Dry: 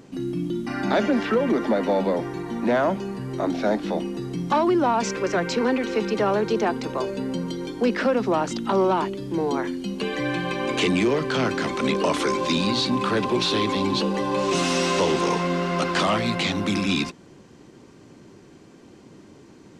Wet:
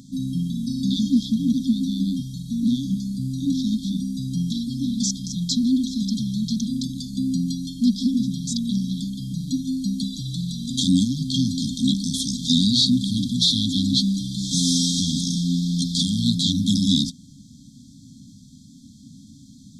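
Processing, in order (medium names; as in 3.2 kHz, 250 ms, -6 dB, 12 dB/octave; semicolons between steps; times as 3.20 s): treble shelf 5.2 kHz +3.5 dB; FFT band-reject 290–3200 Hz; dynamic bell 950 Hz, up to +5 dB, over -47 dBFS, Q 1.2; trim +5.5 dB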